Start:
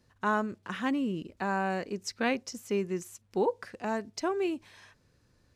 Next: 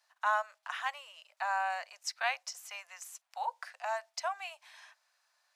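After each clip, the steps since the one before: steep high-pass 640 Hz 72 dB/oct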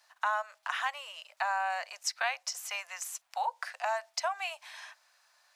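compressor 3:1, threshold -38 dBFS, peak gain reduction 10 dB; gain +8 dB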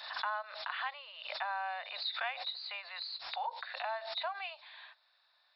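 nonlinear frequency compression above 3400 Hz 4:1; backwards sustainer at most 60 dB/s; gain -6 dB

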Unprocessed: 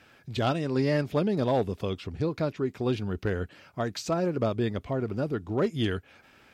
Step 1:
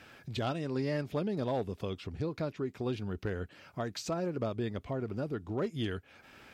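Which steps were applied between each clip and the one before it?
compressor 1.5:1, threshold -50 dBFS, peak gain reduction 10.5 dB; gain +2.5 dB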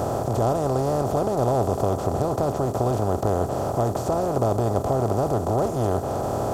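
per-bin compression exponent 0.2; EQ curve 120 Hz 0 dB, 180 Hz -9 dB, 520 Hz -4 dB, 750 Hz 0 dB, 1200 Hz -6 dB, 1800 Hz -21 dB, 4000 Hz -21 dB, 9900 Hz +1 dB; gain +8.5 dB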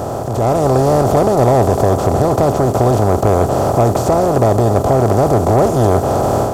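sample leveller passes 1; AGC gain up to 10 dB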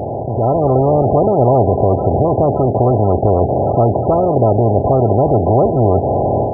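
rattling part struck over -16 dBFS, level -25 dBFS; loudest bins only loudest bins 32

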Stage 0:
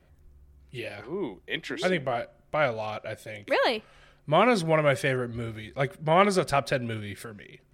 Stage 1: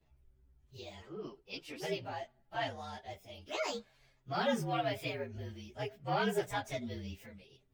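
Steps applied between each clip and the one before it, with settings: inharmonic rescaling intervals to 116%; ensemble effect; gain -5 dB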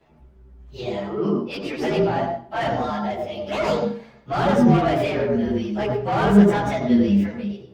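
overdrive pedal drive 24 dB, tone 1000 Hz, clips at -19.5 dBFS; on a send at -2.5 dB: reverb RT60 0.50 s, pre-delay 76 ms; on the sum: gain +6 dB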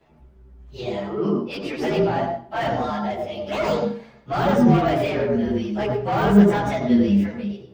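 de-esser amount 85%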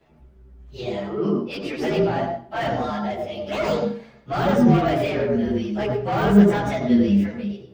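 bell 930 Hz -3 dB 0.55 oct

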